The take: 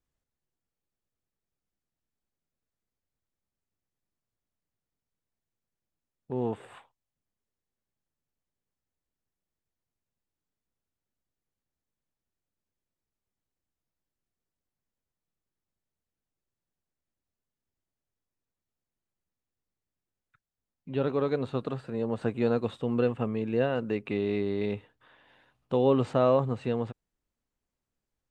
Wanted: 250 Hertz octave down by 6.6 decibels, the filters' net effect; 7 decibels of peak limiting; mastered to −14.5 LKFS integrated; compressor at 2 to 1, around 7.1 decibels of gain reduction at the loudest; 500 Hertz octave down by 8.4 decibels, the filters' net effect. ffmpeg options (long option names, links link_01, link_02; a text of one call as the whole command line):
ffmpeg -i in.wav -af "equalizer=frequency=250:width_type=o:gain=-5.5,equalizer=frequency=500:width_type=o:gain=-8.5,acompressor=threshold=-37dB:ratio=2,volume=27.5dB,alimiter=limit=-1.5dB:level=0:latency=1" out.wav